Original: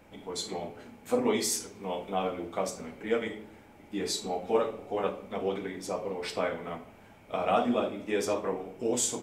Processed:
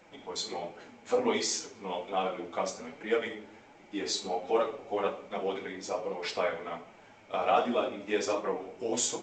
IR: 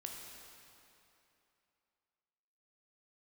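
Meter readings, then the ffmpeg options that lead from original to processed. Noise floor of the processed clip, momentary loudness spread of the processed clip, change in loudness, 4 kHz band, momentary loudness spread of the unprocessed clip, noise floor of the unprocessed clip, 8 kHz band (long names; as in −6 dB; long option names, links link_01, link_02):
−56 dBFS, 12 LU, −0.5 dB, +1.5 dB, 11 LU, −55 dBFS, −1.5 dB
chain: -af "lowshelf=frequency=230:gain=-12,flanger=delay=5.2:depth=5.4:regen=-17:speed=1.3:shape=triangular,volume=5dB" -ar 16000 -c:a g722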